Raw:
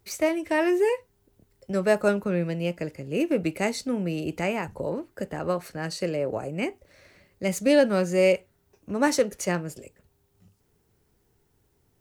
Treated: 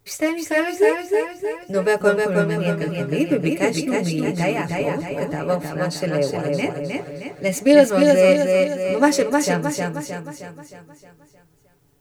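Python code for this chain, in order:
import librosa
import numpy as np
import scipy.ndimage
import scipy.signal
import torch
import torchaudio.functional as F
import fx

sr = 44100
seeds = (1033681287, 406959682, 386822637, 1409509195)

p1 = x + 0.77 * np.pad(x, (int(7.0 * sr / 1000.0), 0))[:len(x)]
p2 = p1 + fx.echo_feedback(p1, sr, ms=311, feedback_pct=50, wet_db=-3.5, dry=0)
y = p2 * librosa.db_to_amplitude(2.5)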